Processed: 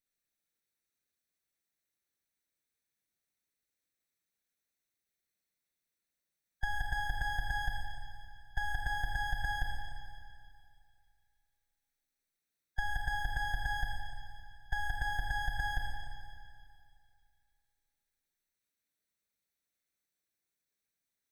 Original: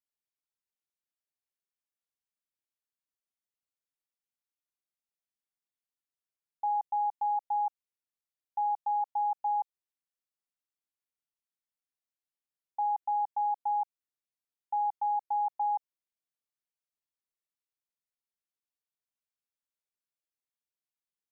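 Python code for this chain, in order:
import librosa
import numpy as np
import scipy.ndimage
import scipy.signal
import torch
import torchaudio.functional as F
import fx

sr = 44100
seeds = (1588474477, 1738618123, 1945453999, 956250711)

y = fx.lower_of_two(x, sr, delay_ms=0.5)
y = fx.hpss(y, sr, part='harmonic', gain_db=-11)
y = fx.rev_schroeder(y, sr, rt60_s=2.3, comb_ms=33, drr_db=0.5)
y = y * librosa.db_to_amplitude(8.5)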